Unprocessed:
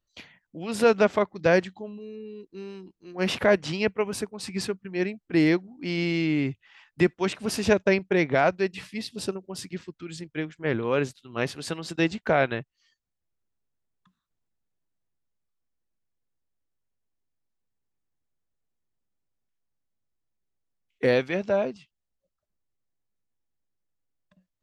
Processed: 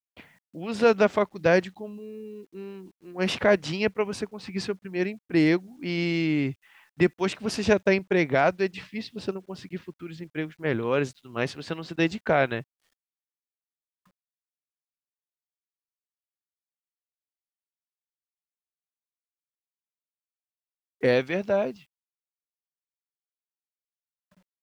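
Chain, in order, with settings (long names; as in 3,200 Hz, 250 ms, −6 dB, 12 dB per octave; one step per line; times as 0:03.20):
low-pass that shuts in the quiet parts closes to 1,800 Hz, open at −20.5 dBFS
bit reduction 11 bits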